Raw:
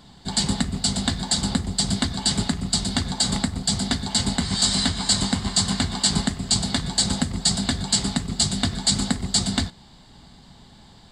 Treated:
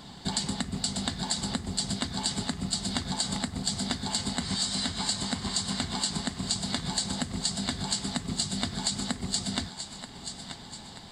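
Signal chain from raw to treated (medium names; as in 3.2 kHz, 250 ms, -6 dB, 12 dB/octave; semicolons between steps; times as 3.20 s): bass shelf 75 Hz -10 dB; compression 10:1, threshold -31 dBFS, peak gain reduction 16.5 dB; on a send: thinning echo 933 ms, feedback 51%, high-pass 420 Hz, level -9.5 dB; on the sum: trim +4 dB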